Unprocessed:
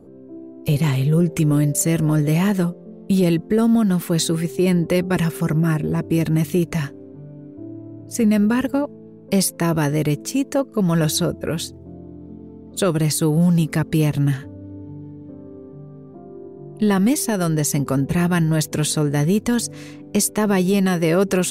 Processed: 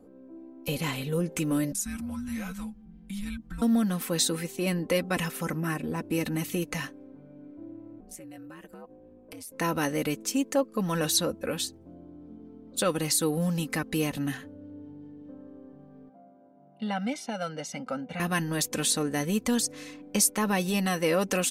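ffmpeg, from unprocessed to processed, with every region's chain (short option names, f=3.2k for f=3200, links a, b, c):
-filter_complex "[0:a]asettb=1/sr,asplit=3[a][b][c];[a]atrim=end=1.724[d];[b]atrim=start=1.72:end=3.62,asetpts=PTS-STARTPTS,afade=t=in:d=0.004:c=qsin,afade=t=out:st=1.896:d=0.004:c=qsin,acompressor=threshold=-31dB:ratio=2:attack=3.2:release=140:knee=1:detection=peak,afreqshift=-390[e];[c]atrim=start=3.616[f];[d][e]acrossfade=d=0.004:c1=hsin:c2=qsin[g];[g][f]acrossfade=d=0.004:c1=qsin:c2=hsin,asettb=1/sr,asplit=3[h][i][j];[h]atrim=end=8.004[k];[i]atrim=start=8:end=9.52,asetpts=PTS-STARTPTS,afade=t=in:d=0.004:c=qsin,afade=t=out:st=1.516:d=0.004:c=qsin,acompressor=threshold=-31dB:ratio=8:attack=3.2:release=140:knee=1:detection=peak,equalizer=f=4.7k:w=1.9:g=-6.5,aeval=exprs='val(0)*sin(2*PI*81*n/s)':c=same[l];[j]atrim=start=9.516[m];[k][l]acrossfade=d=0.004:c1=hsin:c2=qsin[n];[n][m]acrossfade=d=0.004:c1=qsin:c2=hsin,asettb=1/sr,asplit=3[o][p][q];[o]atrim=end=16.094[r];[p]atrim=start=16.09:end=18.2,asetpts=PTS-STARTPTS,afade=t=in:d=0.004:c=qsin,afade=t=out:st=2.106:d=0.004:c=qsin,highpass=260,lowpass=2.9k,equalizer=f=1k:w=0.31:g=-6,aecho=1:1:1.4:0.93,atrim=end_sample=93051[s];[q]atrim=start=18.196[t];[r][s]acrossfade=d=0.004:c1=hsin:c2=qsin[u];[u][t]acrossfade=d=0.004:c1=qsin:c2=hsin,lowshelf=f=460:g=-8.5,aecho=1:1:3.9:0.57,volume=-4dB"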